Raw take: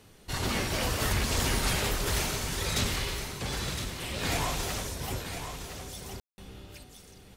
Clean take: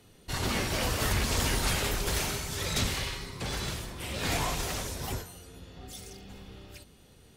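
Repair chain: room tone fill 6.2–6.38; expander -43 dBFS, range -21 dB; inverse comb 1.013 s -8.5 dB

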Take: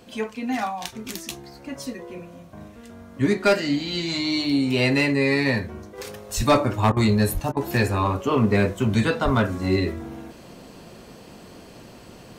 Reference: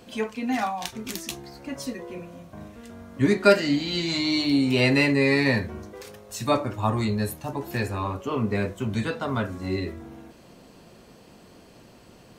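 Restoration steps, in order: clip repair -11 dBFS; de-plosive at 6.36/7.33/9.24; interpolate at 6.92/7.52, 45 ms; gain correction -6.5 dB, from 5.98

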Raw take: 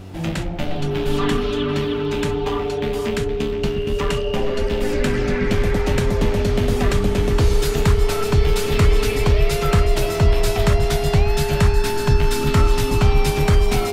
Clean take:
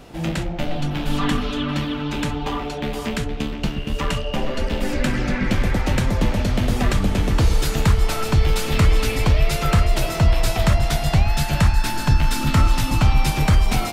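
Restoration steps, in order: de-click; de-hum 94.6 Hz, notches 4; notch 410 Hz, Q 30

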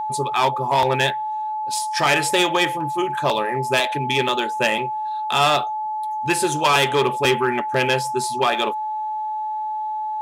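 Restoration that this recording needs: notch 860 Hz, Q 30

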